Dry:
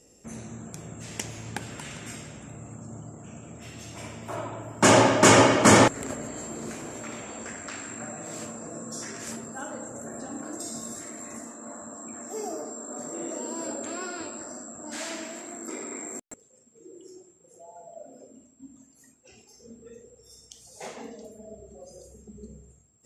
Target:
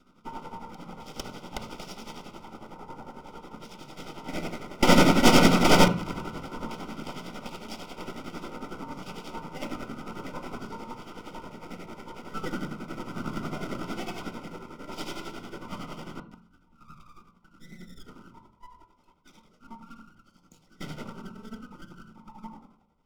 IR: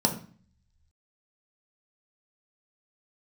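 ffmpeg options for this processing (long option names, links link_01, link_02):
-filter_complex "[0:a]equalizer=frequency=720:width=1.3:gain=4.5,highpass=frequency=160:width_type=q:width=0.5412,highpass=frequency=160:width_type=q:width=1.307,lowpass=frequency=3400:width_type=q:width=0.5176,lowpass=frequency=3400:width_type=q:width=0.7071,lowpass=frequency=3400:width_type=q:width=1.932,afreqshift=230,aeval=exprs='abs(val(0))':channel_layout=same,tremolo=f=11:d=0.76,asplit=2[link_01][link_02];[link_02]aeval=exprs='0.596*sin(PI/2*2*val(0)/0.596)':channel_layout=same,volume=-12dB[link_03];[link_01][link_03]amix=inputs=2:normalize=0,asuperstop=centerf=1700:order=8:qfactor=3.7,aemphasis=mode=production:type=cd,asplit=2[link_04][link_05];[1:a]atrim=start_sample=2205,lowpass=3700[link_06];[link_05][link_06]afir=irnorm=-1:irlink=0,volume=-10.5dB[link_07];[link_04][link_07]amix=inputs=2:normalize=0,volume=-3.5dB"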